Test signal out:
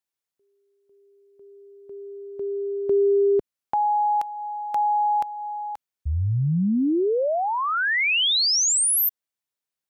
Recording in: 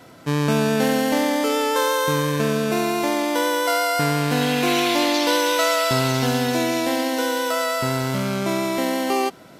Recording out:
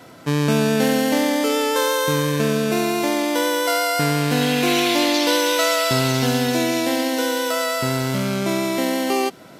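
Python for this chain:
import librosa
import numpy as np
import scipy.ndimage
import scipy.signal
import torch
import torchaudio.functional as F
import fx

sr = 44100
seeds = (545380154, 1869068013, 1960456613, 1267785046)

y = fx.highpass(x, sr, hz=73.0, slope=6)
y = fx.dynamic_eq(y, sr, hz=1000.0, q=0.97, threshold_db=-32.0, ratio=4.0, max_db=-4)
y = y * 10.0 ** (2.5 / 20.0)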